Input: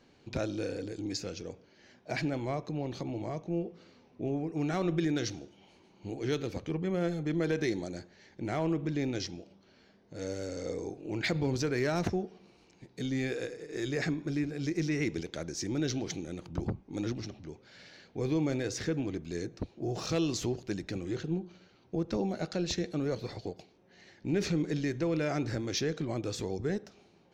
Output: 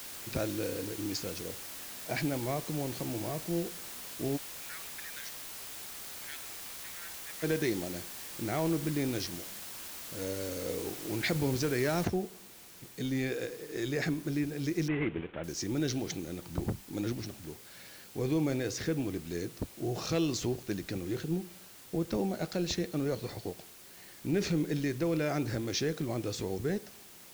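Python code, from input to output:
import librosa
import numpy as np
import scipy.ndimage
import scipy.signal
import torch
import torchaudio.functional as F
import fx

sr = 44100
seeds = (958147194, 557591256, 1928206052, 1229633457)

y = fx.ladder_highpass(x, sr, hz=1500.0, resonance_pct=55, at=(4.36, 7.42), fade=0.02)
y = fx.noise_floor_step(y, sr, seeds[0], at_s=12.05, before_db=-44, after_db=-53, tilt_db=0.0)
y = fx.cvsd(y, sr, bps=16000, at=(14.88, 15.44))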